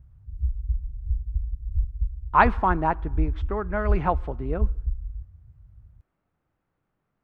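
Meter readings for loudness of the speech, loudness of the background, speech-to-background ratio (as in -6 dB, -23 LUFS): -25.5 LUFS, -31.0 LUFS, 5.5 dB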